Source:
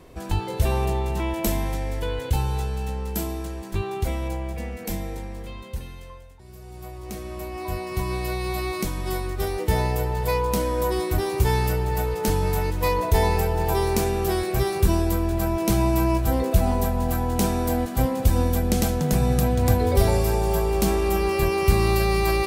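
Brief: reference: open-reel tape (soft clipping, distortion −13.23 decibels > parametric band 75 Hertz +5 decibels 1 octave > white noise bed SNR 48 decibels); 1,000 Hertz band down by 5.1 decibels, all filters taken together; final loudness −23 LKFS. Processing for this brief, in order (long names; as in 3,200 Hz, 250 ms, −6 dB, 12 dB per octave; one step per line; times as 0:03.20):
parametric band 1,000 Hz −6.5 dB
soft clipping −17.5 dBFS
parametric band 75 Hz +5 dB 1 octave
white noise bed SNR 48 dB
level +2 dB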